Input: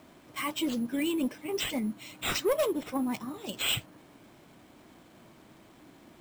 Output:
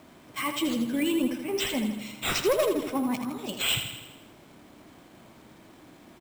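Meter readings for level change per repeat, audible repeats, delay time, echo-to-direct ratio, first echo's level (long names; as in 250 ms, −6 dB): −5.0 dB, 6, 81 ms, −6.5 dB, −8.0 dB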